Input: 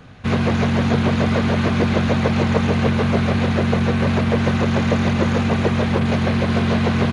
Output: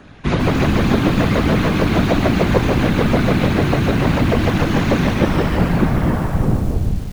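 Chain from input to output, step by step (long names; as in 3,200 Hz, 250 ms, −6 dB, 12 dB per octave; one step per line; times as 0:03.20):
turntable brake at the end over 2.13 s
random phases in short frames
feedback echo at a low word length 149 ms, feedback 55%, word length 6 bits, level −7.5 dB
level +1.5 dB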